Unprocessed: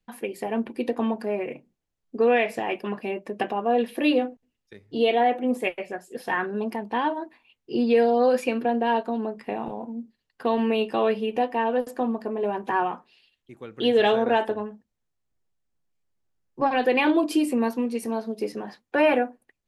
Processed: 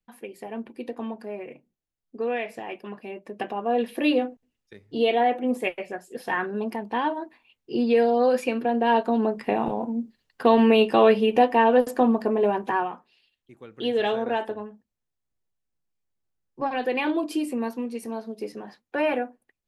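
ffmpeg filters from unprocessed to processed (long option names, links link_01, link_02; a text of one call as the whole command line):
ffmpeg -i in.wav -af "volume=6dB,afade=type=in:start_time=3.09:duration=0.84:silence=0.446684,afade=type=in:start_time=8.69:duration=0.59:silence=0.473151,afade=type=out:start_time=12.33:duration=0.57:silence=0.298538" out.wav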